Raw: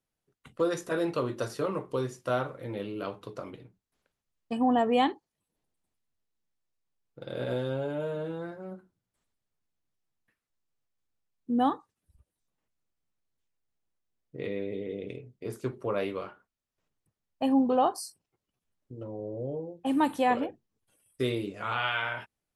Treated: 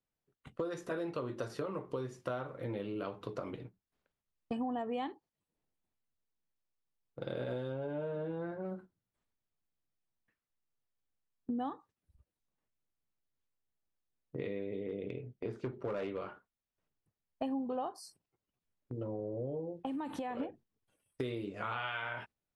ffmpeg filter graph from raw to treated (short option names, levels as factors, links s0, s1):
-filter_complex "[0:a]asettb=1/sr,asplit=3[s0][s1][s2];[s0]atrim=end=7.724[s3];[s1]atrim=start=7.72:end=8.65,asetpts=PTS-STARTPTS,afade=t=in:d=0.004:c=qsin,afade=t=out:st=0.926:d=0.004:c=qsin,bandreject=f=1300:w=16,adynamicsmooth=sensitivity=4.5:basefreq=3300[s4];[s2]atrim=start=8.646[s5];[s3][s4]acrossfade=d=0.004:c1=hsin:c2=qsin[s6];[s6][s5]acrossfade=d=0.004:c1=qsin:c2=hsin,asettb=1/sr,asplit=3[s7][s8][s9];[s7]atrim=end=14.834[s10];[s8]atrim=start=14.83:end=16.21,asetpts=PTS-STARTPTS,afade=t=in:d=0.004:c=qsin,afade=t=out:st=1.376:d=0.004:c=qsin,lowpass=4100,bandreject=f=1100:w=12,volume=22.4,asoftclip=hard,volume=0.0447[s11];[s9]atrim=start=16.206[s12];[s10][s11]acrossfade=d=0.004:c1=hsin:c2=qsin[s13];[s13][s12]acrossfade=d=0.004:c1=qsin:c2=hsin,asettb=1/sr,asplit=3[s14][s15][s16];[s14]atrim=end=19.784[s17];[s15]atrim=start=19.78:end=20.4,asetpts=PTS-STARTPTS,afade=t=in:d=0.004:c=qsin,afade=t=out:st=0.616:d=0.004:c=qsin,acompressor=threshold=0.02:ratio=6:attack=3.2:release=140:knee=1:detection=peak,highshelf=f=8200:g=-5[s18];[s16]atrim=start=20.396[s19];[s17][s18]acrossfade=d=0.004:c1=hsin:c2=qsin[s20];[s20][s19]acrossfade=d=0.004:c1=qsin:c2=hsin,agate=range=0.398:threshold=0.00282:ratio=16:detection=peak,lowpass=f=3300:p=1,acompressor=threshold=0.0112:ratio=6,volume=1.5"